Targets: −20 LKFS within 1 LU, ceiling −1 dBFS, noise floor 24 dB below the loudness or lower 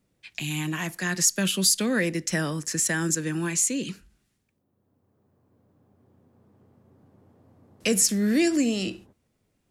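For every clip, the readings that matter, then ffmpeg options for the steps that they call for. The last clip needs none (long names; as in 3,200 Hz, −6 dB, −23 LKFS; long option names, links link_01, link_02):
integrated loudness −24.5 LKFS; sample peak −7.5 dBFS; target loudness −20.0 LKFS
→ -af "volume=4.5dB"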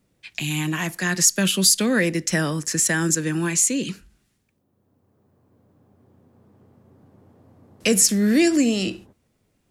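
integrated loudness −20.0 LKFS; sample peak −3.0 dBFS; background noise floor −69 dBFS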